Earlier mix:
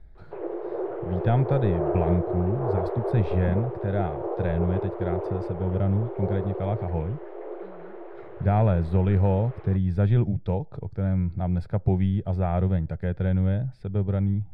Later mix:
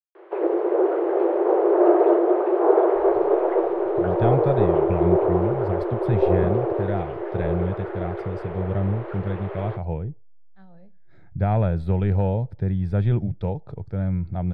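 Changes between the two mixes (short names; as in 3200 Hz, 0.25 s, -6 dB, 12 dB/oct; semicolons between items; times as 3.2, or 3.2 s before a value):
speech: entry +2.95 s; background +10.5 dB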